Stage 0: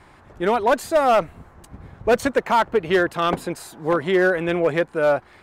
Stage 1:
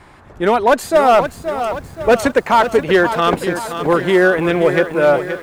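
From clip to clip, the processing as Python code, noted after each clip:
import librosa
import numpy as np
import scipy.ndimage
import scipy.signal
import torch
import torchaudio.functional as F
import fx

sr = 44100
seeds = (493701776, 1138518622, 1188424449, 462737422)

y = fx.echo_crushed(x, sr, ms=525, feedback_pct=55, bits=8, wet_db=-9.5)
y = F.gain(torch.from_numpy(y), 5.5).numpy()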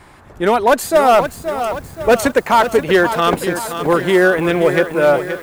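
y = fx.high_shelf(x, sr, hz=8700.0, db=10.0)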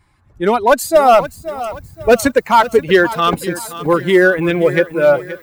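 y = fx.bin_expand(x, sr, power=1.5)
y = F.gain(torch.from_numpy(y), 3.5).numpy()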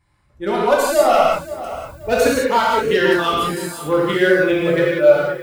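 y = fx.dynamic_eq(x, sr, hz=3900.0, q=0.82, threshold_db=-31.0, ratio=4.0, max_db=4)
y = fx.rev_gated(y, sr, seeds[0], gate_ms=220, shape='flat', drr_db=-5.0)
y = F.gain(torch.from_numpy(y), -10.0).numpy()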